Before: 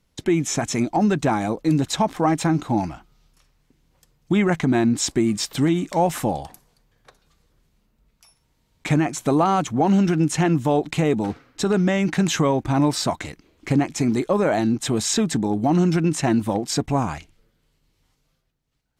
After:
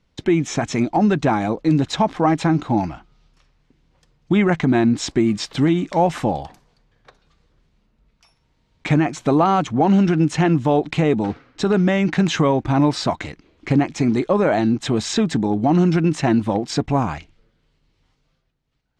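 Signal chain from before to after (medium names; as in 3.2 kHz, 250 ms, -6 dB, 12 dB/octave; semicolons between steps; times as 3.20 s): low-pass 4.7 kHz 12 dB/octave; trim +2.5 dB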